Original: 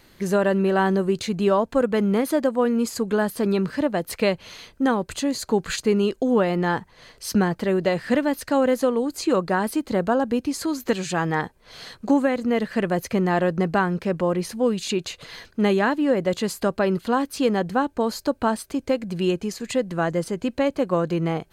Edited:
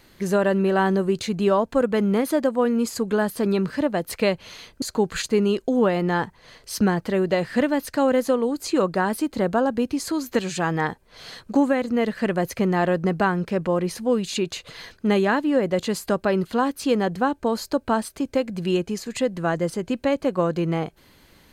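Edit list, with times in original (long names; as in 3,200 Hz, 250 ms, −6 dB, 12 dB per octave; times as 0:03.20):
0:04.82–0:05.36: remove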